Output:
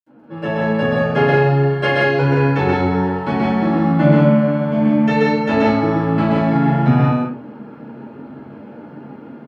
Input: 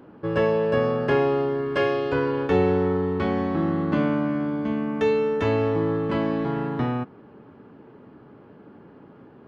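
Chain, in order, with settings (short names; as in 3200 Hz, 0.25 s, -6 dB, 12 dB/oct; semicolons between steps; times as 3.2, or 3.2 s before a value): HPF 120 Hz 12 dB/oct; AGC gain up to 10.5 dB; flange 0.55 Hz, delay 3.3 ms, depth 8.6 ms, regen +51%; loudspeakers at several distances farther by 44 m -2 dB, 59 m -4 dB; reverb RT60 0.30 s, pre-delay 65 ms; gain -2 dB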